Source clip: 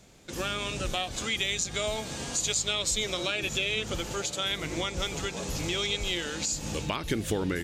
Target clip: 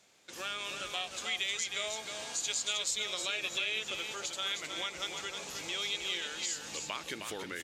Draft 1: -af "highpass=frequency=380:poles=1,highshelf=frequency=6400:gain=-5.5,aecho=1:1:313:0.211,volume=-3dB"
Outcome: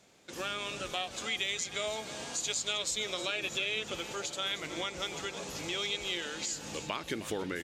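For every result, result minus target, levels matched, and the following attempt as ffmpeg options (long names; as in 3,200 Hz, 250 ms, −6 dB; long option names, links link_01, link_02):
500 Hz band +5.5 dB; echo-to-direct −7.5 dB
-af "highpass=frequency=1200:poles=1,highshelf=frequency=6400:gain=-5.5,aecho=1:1:313:0.211,volume=-3dB"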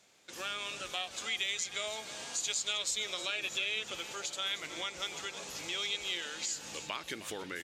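echo-to-direct −7.5 dB
-af "highpass=frequency=1200:poles=1,highshelf=frequency=6400:gain=-5.5,aecho=1:1:313:0.501,volume=-3dB"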